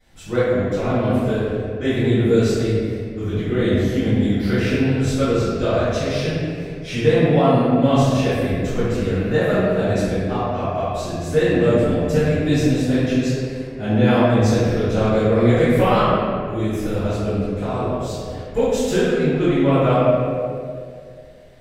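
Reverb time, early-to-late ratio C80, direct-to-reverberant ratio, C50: 2.3 s, −2.0 dB, −21.0 dB, −5.0 dB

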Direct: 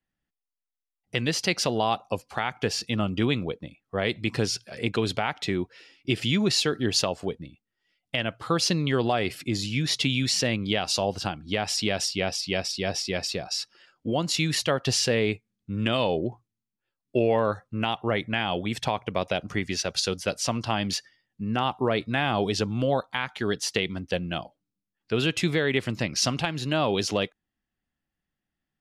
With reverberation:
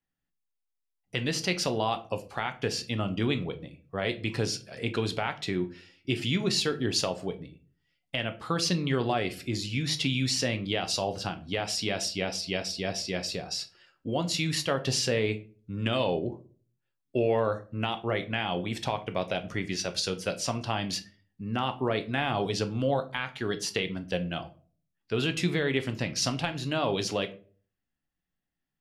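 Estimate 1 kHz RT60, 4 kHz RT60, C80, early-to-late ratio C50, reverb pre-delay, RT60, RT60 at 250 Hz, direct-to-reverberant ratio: 0.35 s, 0.25 s, 21.5 dB, 16.5 dB, 7 ms, 0.40 s, 0.50 s, 8.0 dB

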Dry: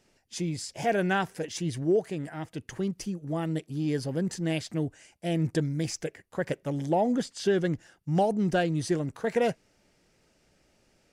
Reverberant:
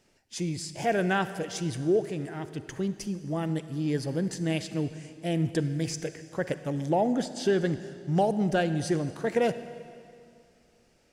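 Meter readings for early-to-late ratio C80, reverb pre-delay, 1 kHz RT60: 13.0 dB, 38 ms, 2.3 s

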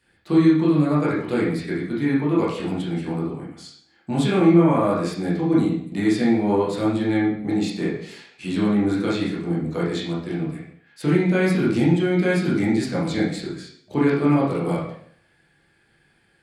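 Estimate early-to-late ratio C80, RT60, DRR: 7.0 dB, 0.60 s, −8.5 dB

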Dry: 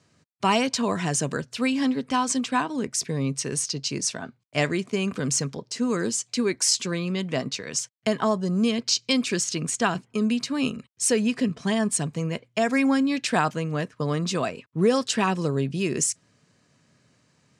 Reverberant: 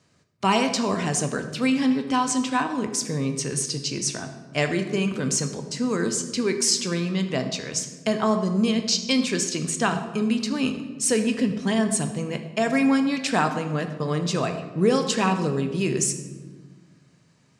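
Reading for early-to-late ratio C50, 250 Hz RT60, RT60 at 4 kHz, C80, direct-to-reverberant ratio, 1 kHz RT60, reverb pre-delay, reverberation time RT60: 9.0 dB, 2.1 s, 0.85 s, 11.0 dB, 6.5 dB, 1.3 s, 16 ms, 1.4 s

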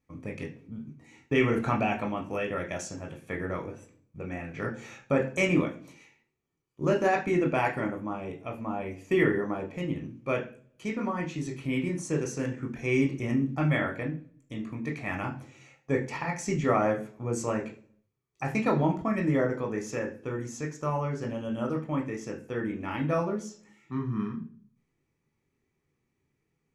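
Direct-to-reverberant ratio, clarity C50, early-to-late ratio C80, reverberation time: 1.5 dB, 11.5 dB, 16.0 dB, 0.45 s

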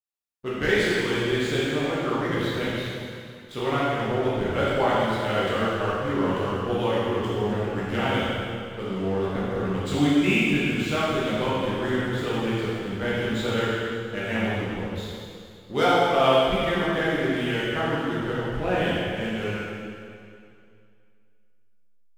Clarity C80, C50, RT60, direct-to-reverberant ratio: −1.5 dB, −3.5 dB, 2.4 s, −9.5 dB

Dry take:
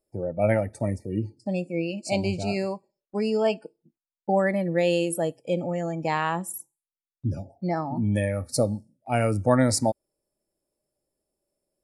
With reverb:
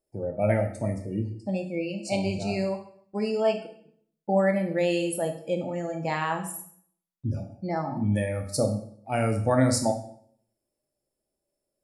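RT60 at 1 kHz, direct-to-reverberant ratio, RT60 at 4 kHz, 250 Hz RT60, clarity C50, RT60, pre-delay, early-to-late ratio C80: 0.60 s, 4.0 dB, 0.55 s, 0.70 s, 9.0 dB, 0.60 s, 12 ms, 13.0 dB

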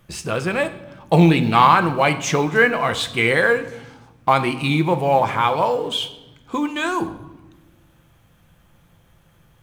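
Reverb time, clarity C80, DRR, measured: 1.1 s, 16.0 dB, 9.0 dB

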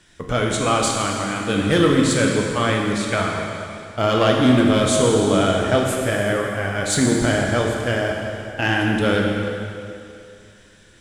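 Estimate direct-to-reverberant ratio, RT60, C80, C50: −1.0 dB, 2.6 s, 2.0 dB, 1.0 dB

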